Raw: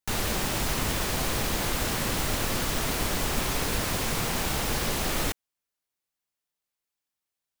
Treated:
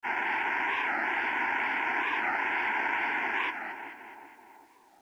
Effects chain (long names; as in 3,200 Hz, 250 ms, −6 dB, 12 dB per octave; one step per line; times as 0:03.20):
in parallel at −2.5 dB: brickwall limiter −24 dBFS, peak gain reduction 9 dB
on the sum: time stretch by phase vocoder 0.66×
sample-and-hold swept by an LFO 9×, swing 60% 2.2 Hz
loudspeaker in its box 410–3,700 Hz, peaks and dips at 440 Hz −6 dB, 660 Hz −6 dB, 940 Hz +9 dB, 1,500 Hz +7 dB, 2,200 Hz +6 dB, 3,700 Hz −4 dB
phaser with its sweep stopped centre 800 Hz, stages 8
on a send: echo with a time of its own for lows and highs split 900 Hz, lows 381 ms, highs 211 ms, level −8 dB
on the sum: bit reduction 11 bits
wow of a warped record 45 rpm, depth 160 cents